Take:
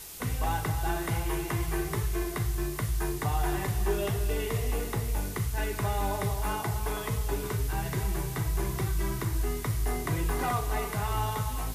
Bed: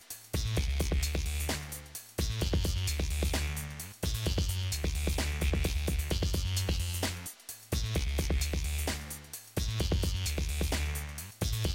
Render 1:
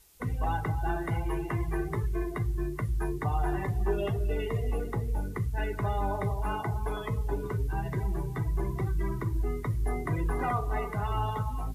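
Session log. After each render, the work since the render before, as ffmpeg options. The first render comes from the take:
-af "afftdn=nr=17:nf=-36"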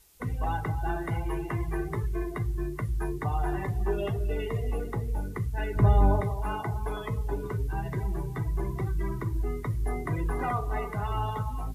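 -filter_complex "[0:a]asettb=1/sr,asplit=3[s0][s1][s2];[s0]atrim=end=5.754[s3];[s1]atrim=start=5.75:end=6.21,asetpts=PTS-STARTPTS,afade=t=in:d=0.004:c=qsin,afade=t=out:st=0.456:d=0.004:c=qsin,lowshelf=f=470:g=11.5[s4];[s2]atrim=start=6.206[s5];[s3][s4]acrossfade=d=0.004:c1=hsin:c2=qsin[s6];[s6][s5]acrossfade=d=0.004:c1=qsin:c2=hsin"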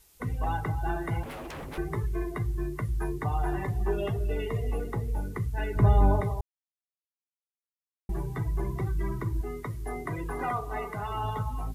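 -filter_complex "[0:a]asettb=1/sr,asplit=3[s0][s1][s2];[s0]atrim=end=1.234[s3];[s1]atrim=start=1.23:end=1.78,asetpts=PTS-STARTPTS,afade=t=in:d=0.004:c=qsin,afade=t=out:st=0.546:d=0.004:c=qsin,aeval=exprs='0.0188*(abs(mod(val(0)/0.0188+3,4)-2)-1)':c=same[s4];[s2]atrim=start=1.776[s5];[s3][s4]acrossfade=d=0.004:c1=hsin:c2=qsin[s6];[s6][s5]acrossfade=d=0.004:c1=qsin:c2=hsin,asettb=1/sr,asplit=3[s7][s8][s9];[s7]atrim=end=9.414[s10];[s8]atrim=start=9.41:end=11.24,asetpts=PTS-STARTPTS,afade=t=in:d=0.004:c=qsin,afade=t=out:st=1.826:d=0.004:c=qsin,lowshelf=f=160:g=-8.5[s11];[s9]atrim=start=11.236[s12];[s10][s11]acrossfade=d=0.004:c1=hsin:c2=qsin[s13];[s13][s12]acrossfade=d=0.004:c1=qsin:c2=hsin,asplit=3[s14][s15][s16];[s14]atrim=end=6.41,asetpts=PTS-STARTPTS,afade=t=out:st=6.406:d=0.004:c=hsin[s17];[s15]atrim=start=6.41:end=8.09,asetpts=PTS-STARTPTS,volume=0[s18];[s16]atrim=start=8.09,asetpts=PTS-STARTPTS,afade=t=in:d=0.004:c=hsin[s19];[s17][s18][s19]concat=n=3:v=0:a=1"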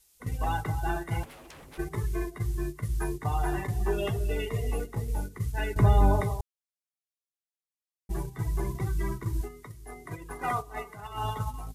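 -af "agate=range=0.282:threshold=0.0282:ratio=16:detection=peak,equalizer=f=8000:w=0.31:g=9.5"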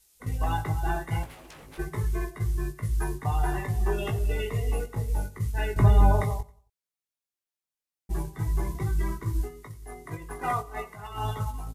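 -filter_complex "[0:a]asplit=2[s0][s1];[s1]adelay=19,volume=0.501[s2];[s0][s2]amix=inputs=2:normalize=0,aecho=1:1:90|180|270:0.0891|0.0348|0.0136"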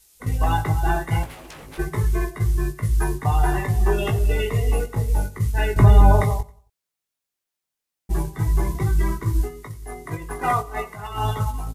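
-af "volume=2.24,alimiter=limit=0.708:level=0:latency=1"

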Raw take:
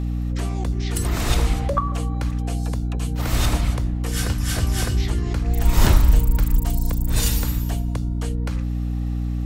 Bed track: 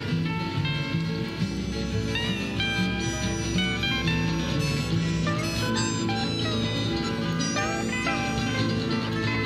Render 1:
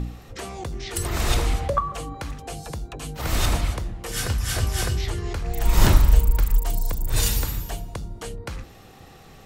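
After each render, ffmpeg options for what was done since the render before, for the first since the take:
-af "bandreject=f=60:t=h:w=4,bandreject=f=120:t=h:w=4,bandreject=f=180:t=h:w=4,bandreject=f=240:t=h:w=4,bandreject=f=300:t=h:w=4"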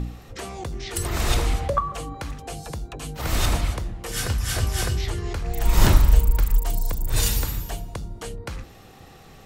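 -af anull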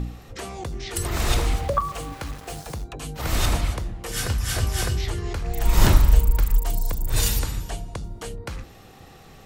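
-filter_complex "[0:a]asettb=1/sr,asplit=3[s0][s1][s2];[s0]atrim=end=1.114[s3];[s1]atrim=start=1.11:end=2.84,asetpts=PTS-STARTPTS,afade=t=in:d=0.004:c=qsin,afade=t=out:st=1.726:d=0.004:c=qsin,aeval=exprs='val(0)*gte(abs(val(0)),0.0141)':c=same[s4];[s2]atrim=start=2.836[s5];[s3][s4]acrossfade=d=0.004:c1=hsin:c2=qsin[s6];[s6][s5]acrossfade=d=0.004:c1=qsin:c2=hsin,asettb=1/sr,asplit=3[s7][s8][s9];[s7]atrim=end=7.394[s10];[s8]atrim=start=7.39:end=8.04,asetpts=PTS-STARTPTS,afade=t=in:d=0.004:c=qsin,afade=t=out:st=0.646:d=0.004:c=qsin,lowpass=f=11000:w=0.5412,lowpass=f=11000:w=1.3066[s11];[s9]atrim=start=8.036[s12];[s10][s11]acrossfade=d=0.004:c1=hsin:c2=qsin[s13];[s13][s12]acrossfade=d=0.004:c1=qsin:c2=hsin"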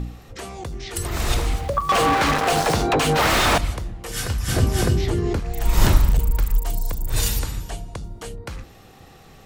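-filter_complex "[0:a]asettb=1/sr,asplit=3[s0][s1][s2];[s0]atrim=end=1.894[s3];[s1]atrim=start=1.89:end=3.58,asetpts=PTS-STARTPTS,afade=t=in:d=0.004:c=qsin,afade=t=out:st=1.686:d=0.004:c=qsin,asplit=2[s4][s5];[s5]highpass=f=720:p=1,volume=79.4,asoftclip=type=tanh:threshold=0.398[s6];[s4][s6]amix=inputs=2:normalize=0,lowpass=f=2100:p=1,volume=0.501[s7];[s2]atrim=start=3.576[s8];[s3][s7]acrossfade=d=0.004:c1=hsin:c2=qsin[s9];[s9][s8]acrossfade=d=0.004:c1=qsin:c2=hsin,asettb=1/sr,asplit=3[s10][s11][s12];[s10]atrim=end=4.484[s13];[s11]atrim=start=4.48:end=5.4,asetpts=PTS-STARTPTS,afade=t=in:d=0.004:c=qsin,afade=t=out:st=0.916:d=0.004:c=qsin,equalizer=f=250:t=o:w=2.5:g=13[s14];[s12]atrim=start=5.396[s15];[s13][s14]acrossfade=d=0.004:c1=hsin:c2=qsin[s16];[s16][s15]acrossfade=d=0.004:c1=qsin:c2=hsin,asettb=1/sr,asplit=3[s17][s18][s19];[s17]atrim=end=6.094[s20];[s18]atrim=start=6.09:end=6.56,asetpts=PTS-STARTPTS,afade=t=in:d=0.004:c=qsin,afade=t=out:st=0.466:d=0.004:c=qsin,asoftclip=type=hard:threshold=0.251[s21];[s19]atrim=start=6.556[s22];[s20][s21]acrossfade=d=0.004:c1=hsin:c2=qsin[s23];[s23][s22]acrossfade=d=0.004:c1=qsin:c2=hsin"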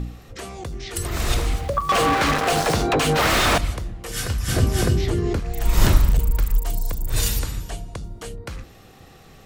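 -af "equalizer=f=870:t=o:w=0.34:g=-3.5"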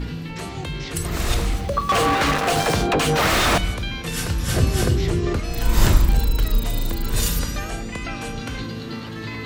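-filter_complex "[1:a]volume=0.562[s0];[0:a][s0]amix=inputs=2:normalize=0"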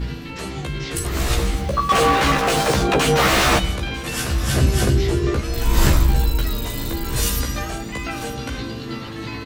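-filter_complex "[0:a]asplit=2[s0][s1];[s1]adelay=15,volume=0.75[s2];[s0][s2]amix=inputs=2:normalize=0,aecho=1:1:946:0.106"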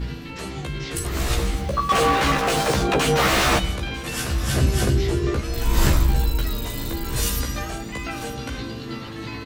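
-af "volume=0.75"

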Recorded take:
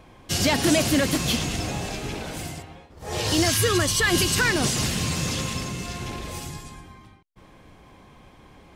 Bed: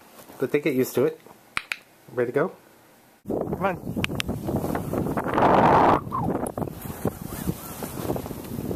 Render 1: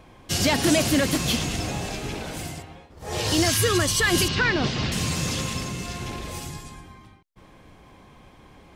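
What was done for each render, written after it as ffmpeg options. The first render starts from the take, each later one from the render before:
-filter_complex "[0:a]asettb=1/sr,asplit=3[s0][s1][s2];[s0]atrim=end=4.284[s3];[s1]atrim=start=4.28:end=4.92,asetpts=PTS-STARTPTS,afade=t=in:d=0.004:c=qsin,afade=t=out:st=0.636:d=0.004:c=qsin,lowpass=f=4500:w=0.5412,lowpass=f=4500:w=1.3066[s4];[s2]atrim=start=4.916[s5];[s3][s4]acrossfade=d=0.004:c1=hsin:c2=qsin[s6];[s6][s5]acrossfade=d=0.004:c1=qsin:c2=hsin"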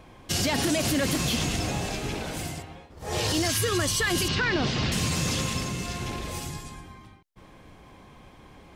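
-af "alimiter=limit=0.15:level=0:latency=1:release=34"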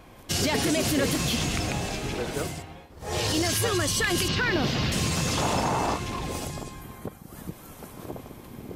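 -filter_complex "[1:a]volume=0.316[s0];[0:a][s0]amix=inputs=2:normalize=0"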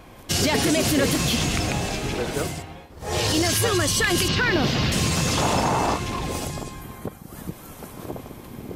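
-af "volume=1.58"

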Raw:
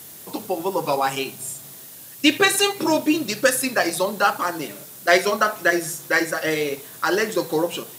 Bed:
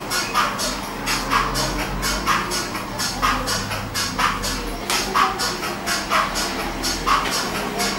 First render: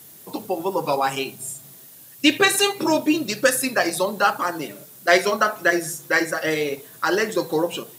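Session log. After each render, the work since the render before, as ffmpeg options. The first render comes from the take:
-af "afftdn=nr=6:nf=-41"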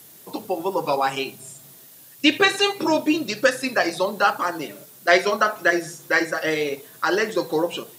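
-filter_complex "[0:a]acrossover=split=5500[s0][s1];[s1]acompressor=threshold=0.00562:ratio=4:attack=1:release=60[s2];[s0][s2]amix=inputs=2:normalize=0,bass=f=250:g=-3,treble=f=4000:g=2"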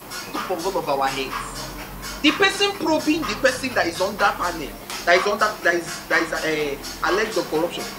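-filter_complex "[1:a]volume=0.316[s0];[0:a][s0]amix=inputs=2:normalize=0"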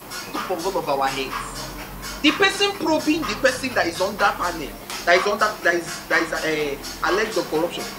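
-af anull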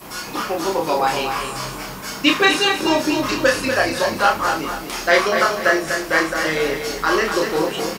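-filter_complex "[0:a]asplit=2[s0][s1];[s1]adelay=31,volume=0.75[s2];[s0][s2]amix=inputs=2:normalize=0,asplit=2[s3][s4];[s4]aecho=0:1:243|486|729|972:0.447|0.156|0.0547|0.0192[s5];[s3][s5]amix=inputs=2:normalize=0"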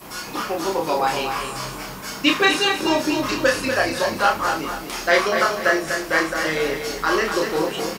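-af "volume=0.794"

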